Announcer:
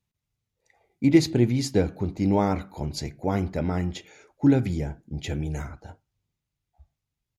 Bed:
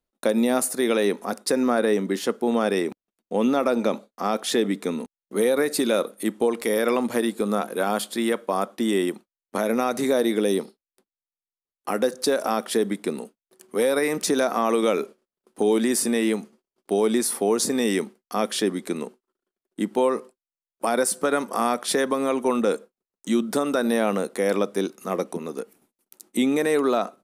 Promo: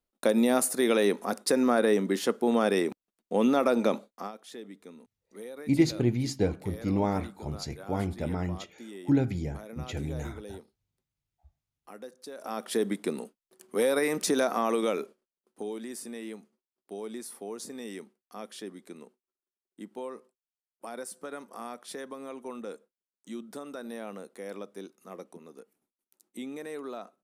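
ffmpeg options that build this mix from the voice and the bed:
-filter_complex "[0:a]adelay=4650,volume=0.562[s0];[1:a]volume=5.62,afade=t=out:st=4.07:d=0.25:silence=0.112202,afade=t=in:st=12.34:d=0.54:silence=0.133352,afade=t=out:st=14.42:d=1.34:silence=0.211349[s1];[s0][s1]amix=inputs=2:normalize=0"

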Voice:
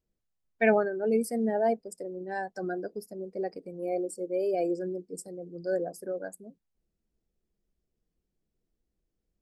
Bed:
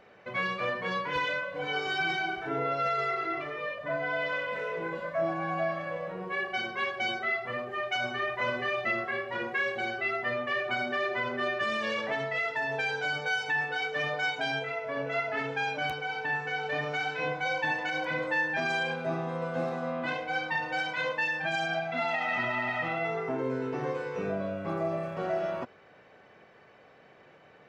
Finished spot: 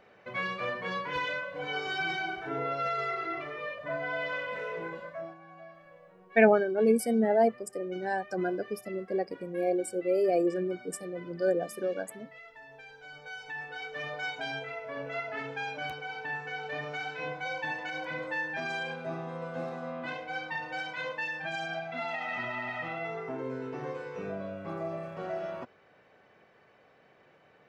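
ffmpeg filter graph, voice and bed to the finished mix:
-filter_complex "[0:a]adelay=5750,volume=1.33[s0];[1:a]volume=3.98,afade=t=out:st=4.78:d=0.6:silence=0.141254,afade=t=in:st=12.99:d=1.33:silence=0.188365[s1];[s0][s1]amix=inputs=2:normalize=0"

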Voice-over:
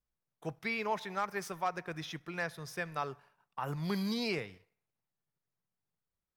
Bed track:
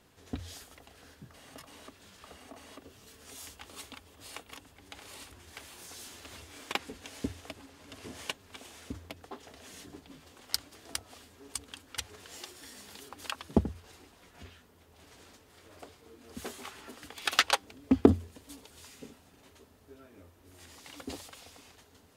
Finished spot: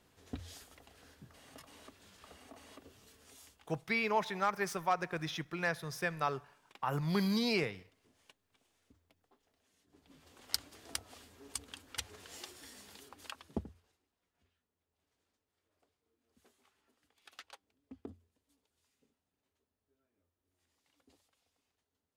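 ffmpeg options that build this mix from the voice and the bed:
-filter_complex "[0:a]adelay=3250,volume=1.33[s0];[1:a]volume=7.94,afade=t=out:st=2.9:d=0.89:silence=0.0891251,afade=t=in:st=9.87:d=0.64:silence=0.0707946,afade=t=out:st=12.5:d=1.48:silence=0.0562341[s1];[s0][s1]amix=inputs=2:normalize=0"

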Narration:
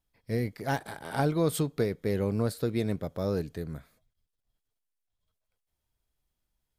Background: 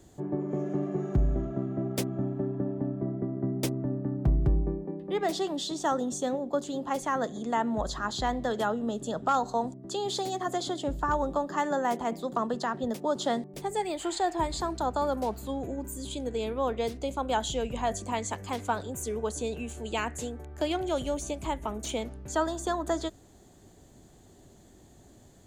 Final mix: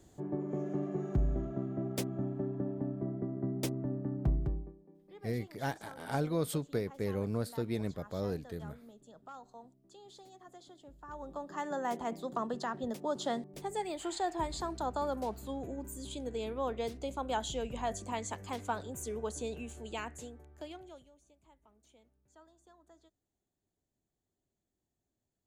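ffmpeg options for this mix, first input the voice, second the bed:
-filter_complex "[0:a]adelay=4950,volume=0.501[s0];[1:a]volume=4.22,afade=t=out:st=4.27:d=0.46:silence=0.11885,afade=t=in:st=11.01:d=0.96:silence=0.133352,afade=t=out:st=19.51:d=1.59:silence=0.0473151[s1];[s0][s1]amix=inputs=2:normalize=0"

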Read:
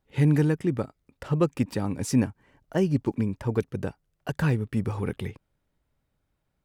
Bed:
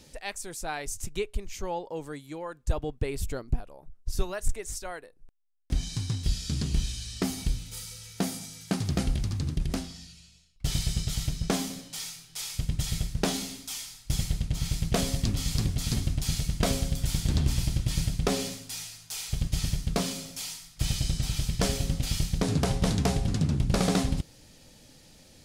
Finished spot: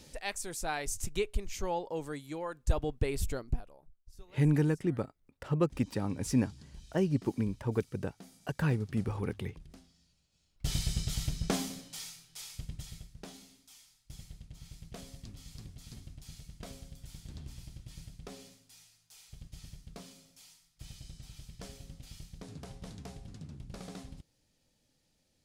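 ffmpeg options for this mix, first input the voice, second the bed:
-filter_complex "[0:a]adelay=4200,volume=0.531[s0];[1:a]volume=8.41,afade=t=out:st=3.21:d=0.85:silence=0.0749894,afade=t=in:st=10.29:d=0.4:silence=0.105925,afade=t=out:st=11.58:d=1.5:silence=0.149624[s1];[s0][s1]amix=inputs=2:normalize=0"

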